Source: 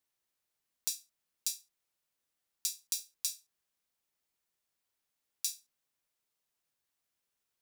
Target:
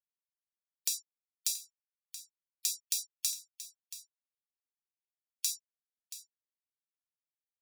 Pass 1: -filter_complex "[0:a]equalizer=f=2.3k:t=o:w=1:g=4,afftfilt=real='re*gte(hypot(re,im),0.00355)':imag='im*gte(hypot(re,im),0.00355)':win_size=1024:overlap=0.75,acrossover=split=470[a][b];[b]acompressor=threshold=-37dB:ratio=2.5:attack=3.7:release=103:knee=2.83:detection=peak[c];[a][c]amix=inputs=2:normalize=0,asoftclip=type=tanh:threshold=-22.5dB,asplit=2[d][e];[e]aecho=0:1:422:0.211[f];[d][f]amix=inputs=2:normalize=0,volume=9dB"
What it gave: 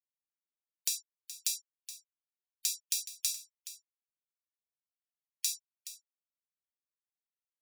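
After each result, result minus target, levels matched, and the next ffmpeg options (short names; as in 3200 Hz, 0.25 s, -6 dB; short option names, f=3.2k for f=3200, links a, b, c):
echo 0.256 s early; 2000 Hz band +3.0 dB
-filter_complex "[0:a]equalizer=f=2.3k:t=o:w=1:g=4,afftfilt=real='re*gte(hypot(re,im),0.00355)':imag='im*gte(hypot(re,im),0.00355)':win_size=1024:overlap=0.75,acrossover=split=470[a][b];[b]acompressor=threshold=-37dB:ratio=2.5:attack=3.7:release=103:knee=2.83:detection=peak[c];[a][c]amix=inputs=2:normalize=0,asoftclip=type=tanh:threshold=-22.5dB,asplit=2[d][e];[e]aecho=0:1:678:0.211[f];[d][f]amix=inputs=2:normalize=0,volume=9dB"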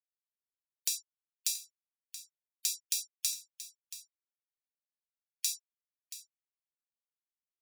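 2000 Hz band +3.5 dB
-filter_complex "[0:a]afftfilt=real='re*gte(hypot(re,im),0.00355)':imag='im*gte(hypot(re,im),0.00355)':win_size=1024:overlap=0.75,acrossover=split=470[a][b];[b]acompressor=threshold=-37dB:ratio=2.5:attack=3.7:release=103:knee=2.83:detection=peak[c];[a][c]amix=inputs=2:normalize=0,asoftclip=type=tanh:threshold=-22.5dB,asplit=2[d][e];[e]aecho=0:1:678:0.211[f];[d][f]amix=inputs=2:normalize=0,volume=9dB"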